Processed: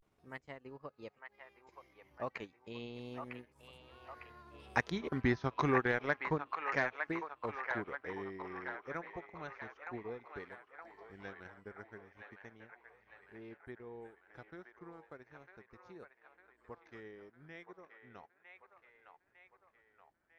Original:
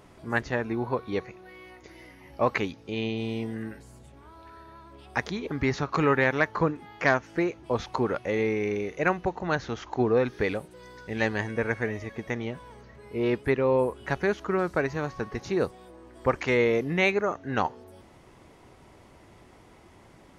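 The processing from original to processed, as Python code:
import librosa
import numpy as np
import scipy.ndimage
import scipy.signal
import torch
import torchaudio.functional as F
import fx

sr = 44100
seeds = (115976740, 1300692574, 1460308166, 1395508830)

p1 = fx.doppler_pass(x, sr, speed_mps=28, closest_m=21.0, pass_at_s=4.98)
p2 = fx.transient(p1, sr, attack_db=3, sustain_db=-12)
p3 = p2 + fx.echo_wet_bandpass(p2, sr, ms=939, feedback_pct=54, hz=1400.0, wet_db=-3.5, dry=0)
p4 = fx.vibrato(p3, sr, rate_hz=0.33, depth_cents=79.0)
y = p4 * librosa.db_to_amplitude(-6.0)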